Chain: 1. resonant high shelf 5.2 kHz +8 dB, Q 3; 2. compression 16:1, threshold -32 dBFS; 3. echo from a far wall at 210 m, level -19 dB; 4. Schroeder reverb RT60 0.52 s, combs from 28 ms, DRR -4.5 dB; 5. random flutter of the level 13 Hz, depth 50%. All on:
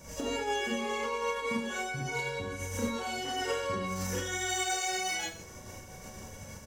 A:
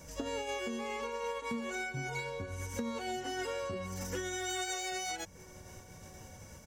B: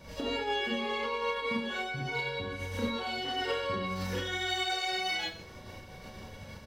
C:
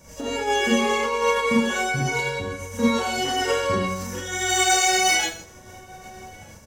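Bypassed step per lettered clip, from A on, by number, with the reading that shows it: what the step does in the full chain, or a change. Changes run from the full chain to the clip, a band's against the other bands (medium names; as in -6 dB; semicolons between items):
4, 125 Hz band +1.5 dB; 1, 8 kHz band -12.5 dB; 2, mean gain reduction 7.5 dB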